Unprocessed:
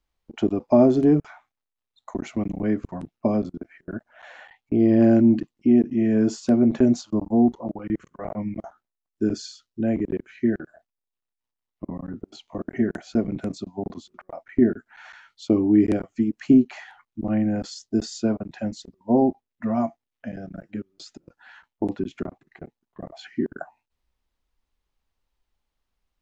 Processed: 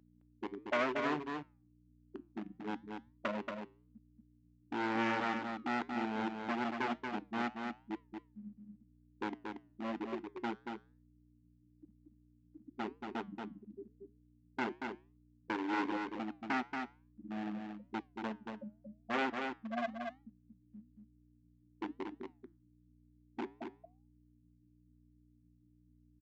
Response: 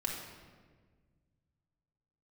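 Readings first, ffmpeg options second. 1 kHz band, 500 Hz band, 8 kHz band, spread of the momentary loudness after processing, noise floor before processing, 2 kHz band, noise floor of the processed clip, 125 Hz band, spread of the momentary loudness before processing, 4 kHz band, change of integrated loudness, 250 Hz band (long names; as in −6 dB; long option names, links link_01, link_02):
−3.5 dB, −17.0 dB, can't be measured, 18 LU, below −85 dBFS, +0.5 dB, −68 dBFS, −23.5 dB, 20 LU, −6.5 dB, −17.0 dB, −20.5 dB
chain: -filter_complex "[0:a]afftfilt=real='re*gte(hypot(re,im),0.316)':imag='im*gte(hypot(re,im),0.316)':win_size=1024:overlap=0.75,dynaudnorm=framelen=410:gausssize=5:maxgain=6dB,aeval=exprs='val(0)+0.0141*(sin(2*PI*60*n/s)+sin(2*PI*2*60*n/s)/2+sin(2*PI*3*60*n/s)/3+sin(2*PI*4*60*n/s)/4+sin(2*PI*5*60*n/s)/5)':channel_layout=same,aresample=16000,asoftclip=type=hard:threshold=-16dB,aresample=44100,bandpass=frequency=2500:width_type=q:width=1:csg=0,flanger=delay=5.3:depth=3.7:regen=-87:speed=1:shape=triangular,asplit=2[link_01][link_02];[link_02]aecho=0:1:231:0.562[link_03];[link_01][link_03]amix=inputs=2:normalize=0,volume=3.5dB"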